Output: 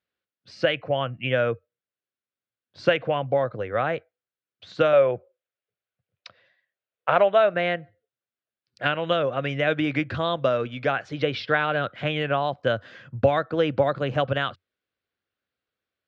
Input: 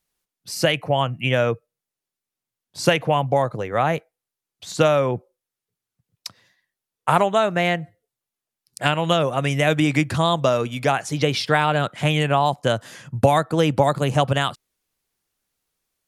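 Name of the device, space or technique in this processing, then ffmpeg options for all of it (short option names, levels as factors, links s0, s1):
guitar cabinet: -filter_complex "[0:a]highpass=88,equalizer=f=90:t=q:w=4:g=6,equalizer=f=160:t=q:w=4:g=-6,equalizer=f=530:t=q:w=4:g=5,equalizer=f=900:t=q:w=4:g=-7,equalizer=f=1500:t=q:w=4:g=6,lowpass=f=3900:w=0.5412,lowpass=f=3900:w=1.3066,asettb=1/sr,asplit=3[s0][s1][s2];[s0]atrim=end=4.934[s3];[s1]atrim=start=4.93:end=7.54,asetpts=PTS-STARTPTS,afade=t=in:d=0.004:c=qsin,afade=t=out:st=2.606:d=0.004:c=qsin,equalizer=f=100:t=o:w=0.67:g=-6,equalizer=f=250:t=o:w=0.67:g=-7,equalizer=f=630:t=o:w=0.67:g=7,equalizer=f=2500:t=o:w=0.67:g=4,equalizer=f=10000:t=o:w=0.67:g=-8[s4];[s2]atrim=start=7.536[s5];[s3][s4]acrossfade=d=0.004:c1=hsin:c2=qsin[s6];[s6][s5]acrossfade=d=0.004:c1=qsin:c2=hsin,volume=0.562"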